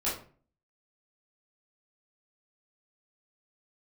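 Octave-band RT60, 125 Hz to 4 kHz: 0.60 s, 0.55 s, 0.45 s, 0.40 s, 0.35 s, 0.30 s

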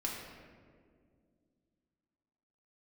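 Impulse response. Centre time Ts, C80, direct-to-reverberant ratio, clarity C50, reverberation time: 76 ms, 3.5 dB, -3.0 dB, 1.5 dB, 2.1 s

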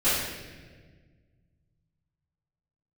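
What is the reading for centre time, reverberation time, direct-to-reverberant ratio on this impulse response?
90 ms, 1.5 s, -16.0 dB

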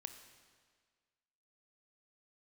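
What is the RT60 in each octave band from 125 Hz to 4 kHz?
1.6 s, 1.7 s, 1.7 s, 1.7 s, 1.7 s, 1.6 s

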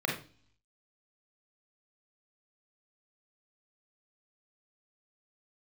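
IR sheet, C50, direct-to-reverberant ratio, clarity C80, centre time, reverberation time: 4.5 dB, -1.5 dB, 11.0 dB, 32 ms, no single decay rate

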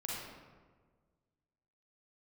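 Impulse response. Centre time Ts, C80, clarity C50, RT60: 97 ms, 1.0 dB, -2.5 dB, 1.5 s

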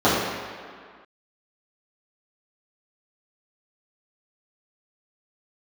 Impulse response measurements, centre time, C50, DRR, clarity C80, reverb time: 102 ms, -0.5 dB, -12.0 dB, 1.5 dB, 1.9 s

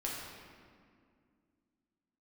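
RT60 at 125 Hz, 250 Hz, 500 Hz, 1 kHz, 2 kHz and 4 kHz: 2.6 s, 3.2 s, 2.3 s, 2.0 s, 1.8 s, 1.3 s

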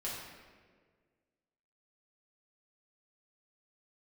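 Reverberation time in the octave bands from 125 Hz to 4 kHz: 2.0 s, 2.0 s, 1.9 s, 1.4 s, 1.4 s, 1.1 s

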